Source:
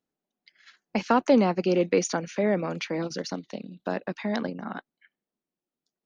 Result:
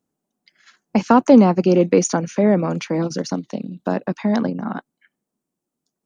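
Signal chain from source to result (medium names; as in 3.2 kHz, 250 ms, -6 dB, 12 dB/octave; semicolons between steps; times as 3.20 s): graphic EQ 125/250/1000/2000/4000/8000 Hz +7/+4/+3/-4/-5/+6 dB; trim +5.5 dB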